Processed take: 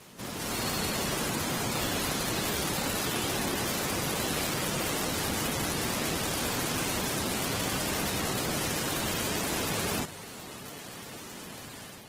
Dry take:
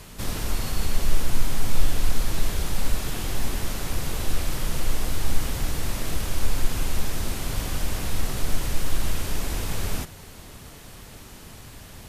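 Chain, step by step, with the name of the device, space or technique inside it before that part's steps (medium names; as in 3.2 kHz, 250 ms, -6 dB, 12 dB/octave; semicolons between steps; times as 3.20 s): noise-suppressed video call (high-pass 170 Hz 12 dB/octave; spectral gate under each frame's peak -20 dB strong; level rider gain up to 7 dB; trim -3 dB; Opus 16 kbps 48 kHz)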